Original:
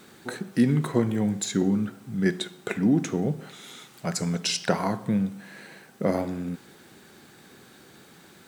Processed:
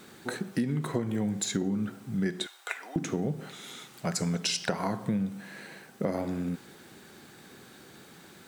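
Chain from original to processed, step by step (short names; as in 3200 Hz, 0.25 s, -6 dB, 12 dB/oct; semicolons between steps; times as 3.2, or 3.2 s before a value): 2.46–2.96 HPF 740 Hz 24 dB/oct; compressor 10:1, threshold -25 dBFS, peak gain reduction 10.5 dB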